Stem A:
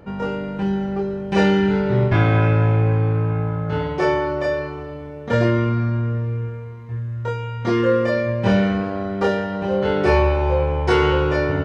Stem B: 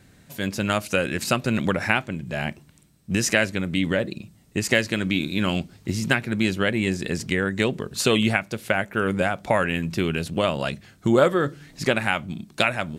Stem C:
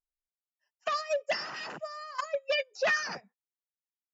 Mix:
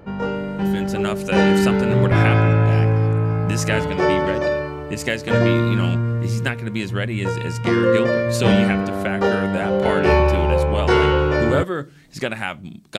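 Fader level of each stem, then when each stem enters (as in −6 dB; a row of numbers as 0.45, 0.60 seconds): +1.0, −3.0, −12.5 decibels; 0.00, 0.35, 1.40 seconds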